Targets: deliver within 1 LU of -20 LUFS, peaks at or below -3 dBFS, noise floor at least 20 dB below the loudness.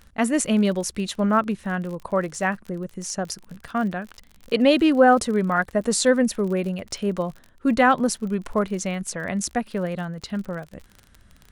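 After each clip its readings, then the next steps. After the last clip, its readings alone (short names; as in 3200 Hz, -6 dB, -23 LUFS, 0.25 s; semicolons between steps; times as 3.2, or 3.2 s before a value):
ticks 41/s; loudness -23.0 LUFS; peak -4.0 dBFS; loudness target -20.0 LUFS
-> de-click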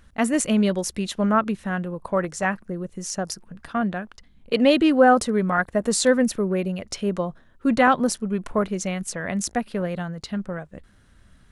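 ticks 0/s; loudness -23.0 LUFS; peak -4.0 dBFS; loudness target -20.0 LUFS
-> gain +3 dB; limiter -3 dBFS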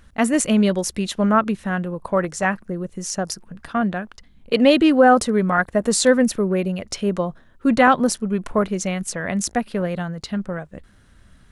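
loudness -20.0 LUFS; peak -3.0 dBFS; noise floor -53 dBFS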